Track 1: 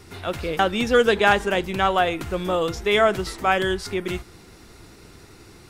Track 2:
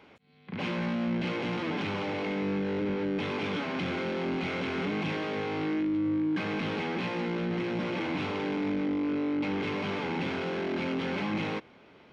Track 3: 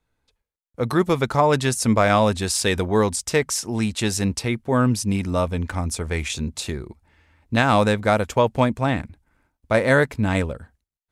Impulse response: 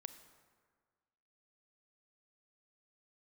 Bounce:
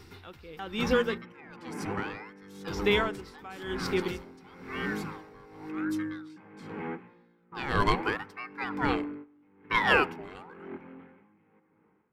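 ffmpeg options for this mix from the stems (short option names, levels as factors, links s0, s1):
-filter_complex "[0:a]alimiter=limit=0.224:level=0:latency=1:release=470,volume=0.841,asplit=3[s0][s1][s2];[s0]atrim=end=1.18,asetpts=PTS-STARTPTS,afade=t=out:st=1.176:d=0.004:c=hsin[s3];[s1]atrim=start=1.18:end=2.67,asetpts=PTS-STARTPTS,volume=0[s4];[s2]atrim=start=2.67,asetpts=PTS-STARTPTS,afade=t=in:d=0.004:c=hsin[s5];[s3][s4][s5]concat=n=3:v=0:a=1[s6];[1:a]lowpass=f=2000:w=0.5412,lowpass=f=2000:w=1.3066,volume=0.631,asplit=2[s7][s8];[s8]volume=0.422[s9];[2:a]aecho=1:1:1.9:0.5,aeval=exprs='val(0)*sin(2*PI*1100*n/s+1100*0.55/0.83*sin(2*PI*0.83*n/s))':c=same,volume=0.473,afade=t=in:st=7.02:d=0.31:silence=0.298538,asplit=3[s10][s11][s12];[s11]volume=0.668[s13];[s12]apad=whole_len=534708[s14];[s7][s14]sidechaingate=range=0.0224:threshold=0.00126:ratio=16:detection=peak[s15];[3:a]atrim=start_sample=2205[s16];[s9][s13]amix=inputs=2:normalize=0[s17];[s17][s16]afir=irnorm=-1:irlink=0[s18];[s6][s15][s10][s18]amix=inputs=4:normalize=0,superequalizer=8b=0.398:15b=0.501:16b=0.447,aeval=exprs='val(0)*pow(10,-19*(0.5-0.5*cos(2*PI*1*n/s))/20)':c=same"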